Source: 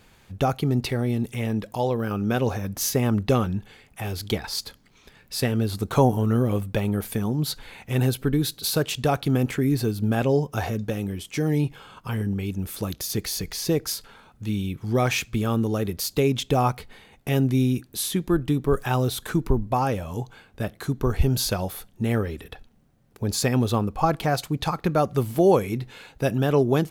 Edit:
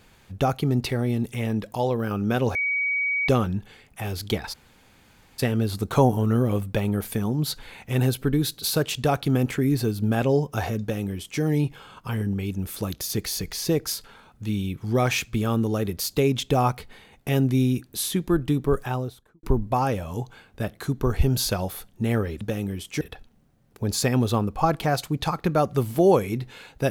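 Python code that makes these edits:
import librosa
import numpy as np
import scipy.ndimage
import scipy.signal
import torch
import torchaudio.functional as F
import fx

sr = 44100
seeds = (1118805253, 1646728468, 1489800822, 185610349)

y = fx.studio_fade_out(x, sr, start_s=18.6, length_s=0.83)
y = fx.edit(y, sr, fx.bleep(start_s=2.55, length_s=0.73, hz=2260.0, db=-21.5),
    fx.room_tone_fill(start_s=4.53, length_s=0.86, crossfade_s=0.02),
    fx.duplicate(start_s=10.81, length_s=0.6, to_s=22.41), tone=tone)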